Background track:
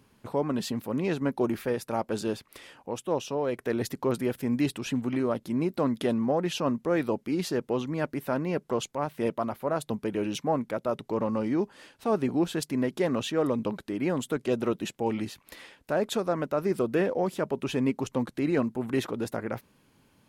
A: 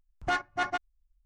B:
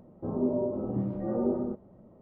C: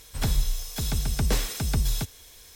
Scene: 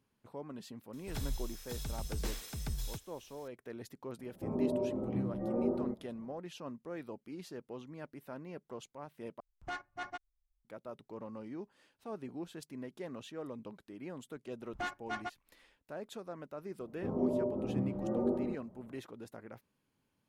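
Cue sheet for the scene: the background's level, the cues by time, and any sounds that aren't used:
background track -17 dB
0.93 s: add C -13.5 dB
4.19 s: add B -4.5 dB
9.40 s: replace with A -12.5 dB
14.52 s: add A -10 dB
16.80 s: add B -4 dB

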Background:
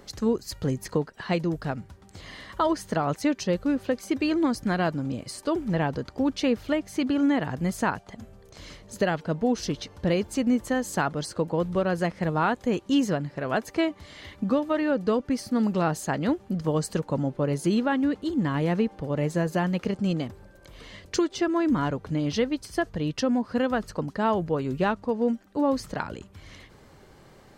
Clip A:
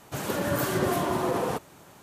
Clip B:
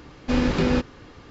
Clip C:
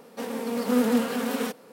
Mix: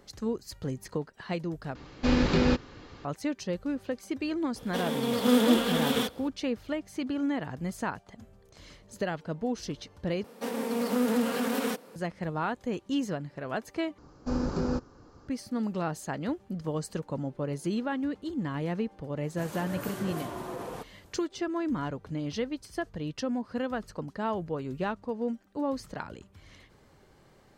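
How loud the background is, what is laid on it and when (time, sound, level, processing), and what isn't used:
background -7 dB
1.75 s: replace with B -2.5 dB + peaking EQ 4.3 kHz +3.5 dB 0.42 oct
4.56 s: add C + peaking EQ 3.4 kHz +14 dB 0.27 oct
10.24 s: replace with C -0.5 dB + compression 2:1, threshold -24 dBFS
13.98 s: replace with B -8 dB + high-order bell 2.6 kHz -15 dB 1.3 oct
19.25 s: add A -11 dB

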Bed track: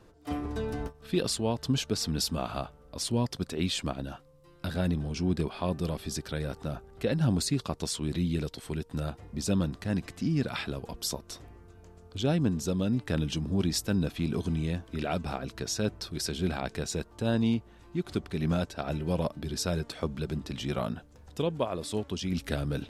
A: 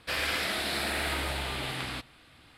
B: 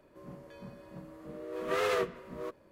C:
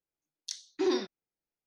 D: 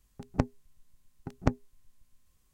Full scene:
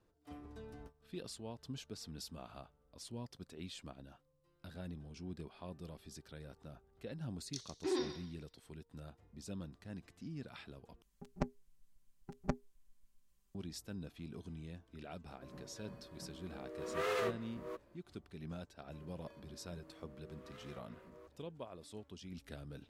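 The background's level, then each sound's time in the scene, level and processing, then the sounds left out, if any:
bed track -18 dB
7.05 s: add C -8 dB + thinning echo 135 ms, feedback 32%, high-pass 780 Hz, level -8.5 dB
11.02 s: replace with D -11.5 dB + comb 5.1 ms, depth 97%
15.26 s: add B -6 dB
18.77 s: add B -9 dB + compression, threshold -45 dBFS
not used: A

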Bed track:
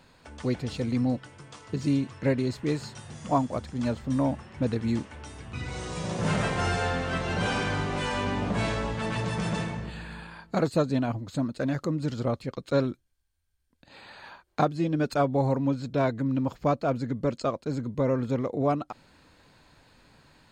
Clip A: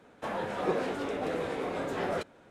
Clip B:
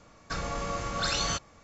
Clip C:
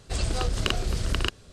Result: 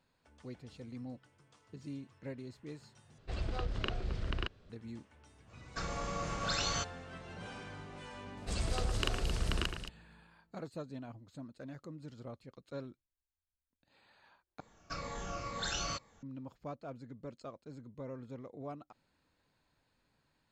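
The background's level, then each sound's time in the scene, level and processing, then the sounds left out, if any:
bed track -19 dB
3.18 s: replace with C -9.5 dB + low-pass 3 kHz
5.46 s: add B -5.5 dB, fades 0.05 s
8.37 s: add C -8.5 dB + echo whose repeats swap between lows and highs 111 ms, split 2.5 kHz, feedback 70%, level -6 dB
14.60 s: replace with B -9 dB + drifting ripple filter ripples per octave 0.98, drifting -2.1 Hz, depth 9 dB
not used: A

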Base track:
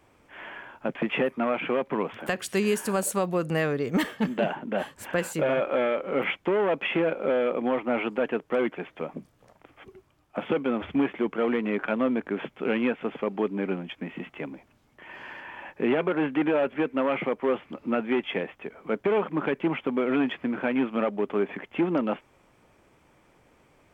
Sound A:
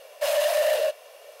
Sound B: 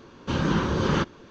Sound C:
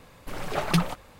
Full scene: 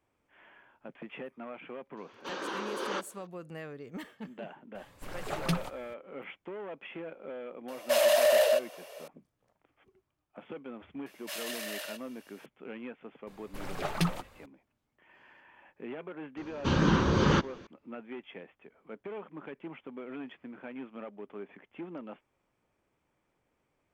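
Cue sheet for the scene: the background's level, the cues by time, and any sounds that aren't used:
base track -17 dB
1.97 s: add B -7.5 dB + high-pass 370 Hz 24 dB/octave
4.75 s: add C -7.5 dB
7.68 s: add A -0.5 dB
11.06 s: add A -7.5 dB + high-pass 1.4 kHz
13.27 s: add C -6 dB
16.37 s: add B -1 dB

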